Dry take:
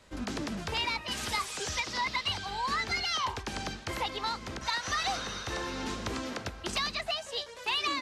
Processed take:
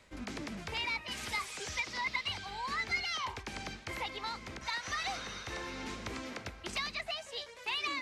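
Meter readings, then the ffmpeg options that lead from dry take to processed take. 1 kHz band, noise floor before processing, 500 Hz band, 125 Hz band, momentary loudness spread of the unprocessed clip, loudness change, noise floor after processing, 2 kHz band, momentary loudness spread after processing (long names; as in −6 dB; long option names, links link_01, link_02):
−6.5 dB, −46 dBFS, −6.5 dB, −6.5 dB, 6 LU, −4.5 dB, −51 dBFS, −2.0 dB, 8 LU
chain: -af "equalizer=frequency=2200:width_type=o:width=0.38:gain=7,areverse,acompressor=mode=upward:threshold=-34dB:ratio=2.5,areverse,volume=-6.5dB"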